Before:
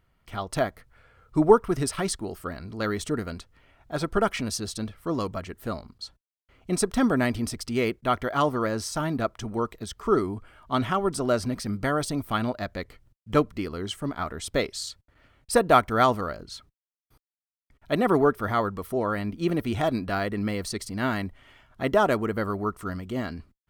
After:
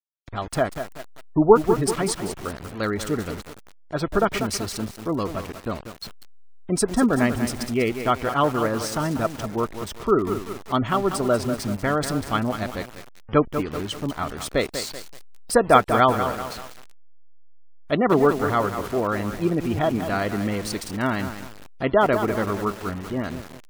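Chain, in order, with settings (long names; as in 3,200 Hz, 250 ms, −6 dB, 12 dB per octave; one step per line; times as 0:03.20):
hold until the input has moved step −35 dBFS
gate on every frequency bin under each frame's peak −30 dB strong
feedback echo at a low word length 192 ms, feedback 55%, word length 6 bits, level −8 dB
level +3 dB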